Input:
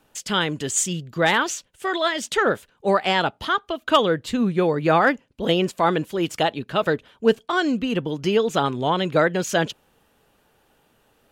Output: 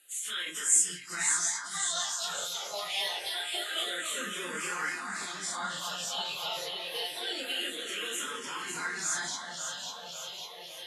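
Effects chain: phase scrambler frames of 0.1 s; elliptic low-pass 11000 Hz, stop band 60 dB; pre-emphasis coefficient 0.97; resonator 170 Hz, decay 0.26 s, harmonics all, mix 70%; speed mistake 24 fps film run at 25 fps; in parallel at +2 dB: negative-ratio compressor -53 dBFS, ratio -1; on the sum: low shelf 420 Hz -8.5 dB; on a send: echo with dull and thin repeats by turns 0.275 s, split 2000 Hz, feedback 85%, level -4 dB; on the sum: endless phaser -0.26 Hz; gain +8.5 dB

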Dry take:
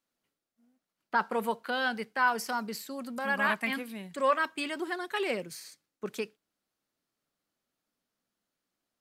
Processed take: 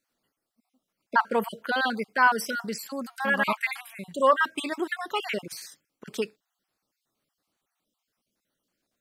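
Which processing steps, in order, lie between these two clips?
random spectral dropouts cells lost 36%; 4.72–5.54 upward compressor, threshold -36 dBFS; gain +6 dB

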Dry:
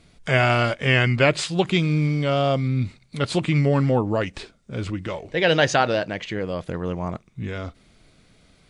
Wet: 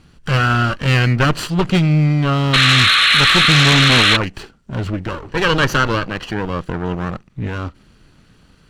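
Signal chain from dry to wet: minimum comb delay 0.67 ms; high shelf 4600 Hz -9 dB; painted sound noise, 2.53–4.17, 1100–4300 Hz -18 dBFS; in parallel at -8 dB: sine folder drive 9 dB, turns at -3.5 dBFS; on the sum: ending taper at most 480 dB/s; gain -1.5 dB

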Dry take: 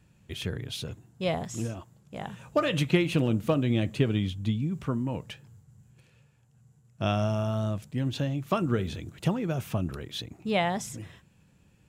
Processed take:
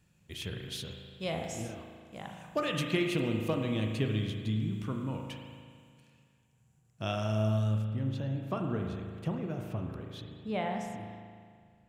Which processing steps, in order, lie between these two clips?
high shelf 2400 Hz +5.5 dB, from 7.82 s -8.5 dB; spring tank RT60 2 s, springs 37 ms, chirp 75 ms, DRR 2.5 dB; gain -7.5 dB

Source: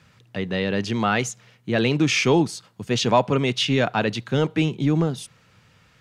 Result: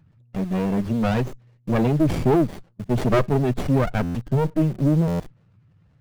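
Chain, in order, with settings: spectral contrast raised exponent 2.1; in parallel at -10 dB: bit-crush 6-bit; on the sum: stuck buffer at 4.02/5.07, samples 512, times 10; running maximum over 33 samples

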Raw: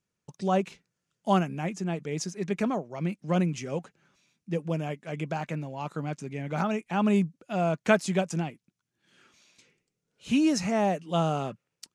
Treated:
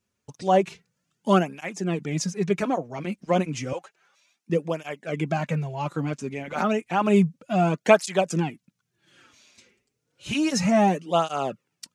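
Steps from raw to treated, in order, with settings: 3.73–4.5 Chebyshev high-pass 720 Hz, order 2; tape flanging out of phase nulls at 0.31 Hz, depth 6.8 ms; gain +8 dB

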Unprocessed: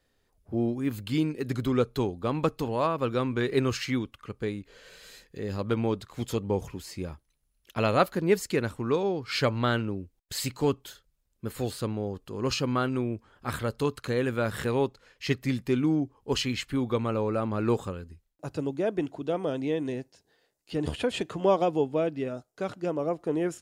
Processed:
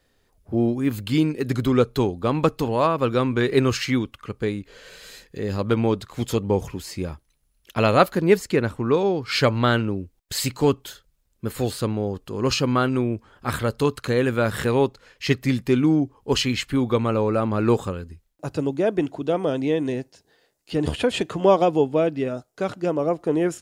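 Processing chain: 8.37–8.97 high shelf 3400 Hz -7 dB; gain +6.5 dB

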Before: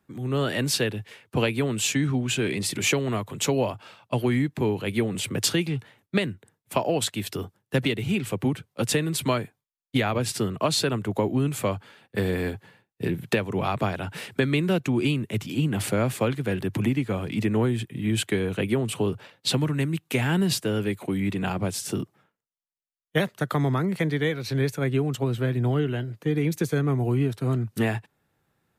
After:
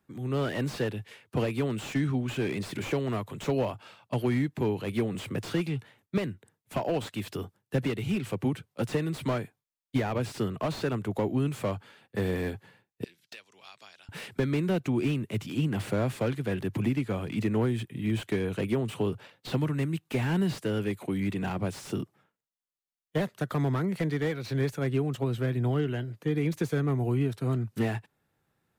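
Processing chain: 13.04–14.09 band-pass 5200 Hz, Q 2.4; slew limiter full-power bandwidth 60 Hz; gain -3.5 dB

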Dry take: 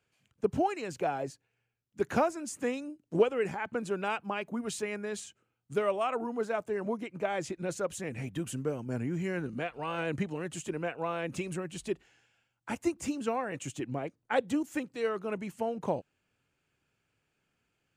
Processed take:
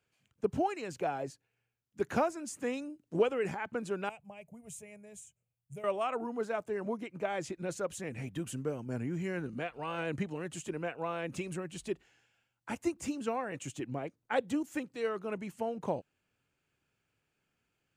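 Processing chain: 2.57–3.55 transient shaper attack -1 dB, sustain +3 dB; 4.09–5.84 EQ curve 150 Hz 0 dB, 300 Hz -24 dB, 620 Hz -7 dB, 1400 Hz -27 dB, 2300 Hz -11 dB, 4400 Hz -22 dB, 6900 Hz -4 dB, 11000 Hz -1 dB; gain -2.5 dB

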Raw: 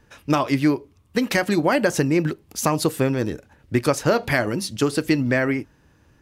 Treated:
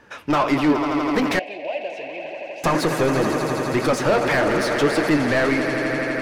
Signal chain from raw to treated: on a send: swelling echo 83 ms, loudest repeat 5, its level -15 dB; on the sum: overdrive pedal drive 24 dB, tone 1700 Hz, clips at -5.5 dBFS; flange 1.8 Hz, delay 2.7 ms, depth 7.8 ms, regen +70%; 1.39–2.64 double band-pass 1300 Hz, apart 2 oct

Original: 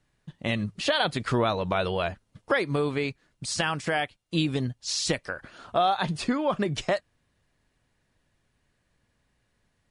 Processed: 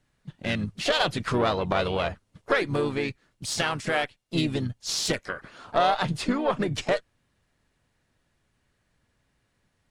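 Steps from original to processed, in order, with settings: added harmonics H 4 -18 dB, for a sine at -10.5 dBFS; harmoniser -4 st -8 dB, +4 st -16 dB

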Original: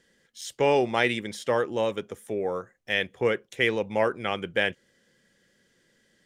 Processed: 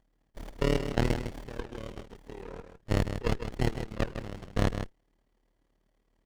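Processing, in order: median filter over 3 samples; HPF 170 Hz 6 dB/oct; band shelf 3400 Hz +14 dB 2.5 oct; in parallel at +2 dB: limiter -14 dBFS, peak gain reduction 17 dB; on the sum: level quantiser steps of 15 dB; AM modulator 37 Hz, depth 85%; on a send: echo 0.156 s -8.5 dB; on the sum: running maximum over 33 samples; gain -8 dB

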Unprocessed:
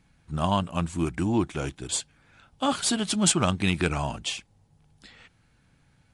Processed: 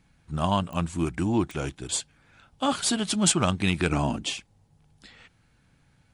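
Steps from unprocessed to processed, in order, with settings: 3.92–4.34 bell 270 Hz +12 dB 1.2 oct; pops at 0.73/1.51, -25 dBFS

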